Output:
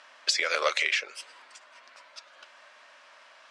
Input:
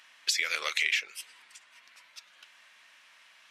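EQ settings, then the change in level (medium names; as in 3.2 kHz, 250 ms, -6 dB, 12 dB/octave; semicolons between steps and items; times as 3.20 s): cabinet simulation 210–8800 Hz, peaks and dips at 250 Hz +9 dB, 590 Hz +9 dB, 1.6 kHz +3 dB, 4.8 kHz +4 dB; high-order bell 680 Hz +9 dB 2.3 oct; 0.0 dB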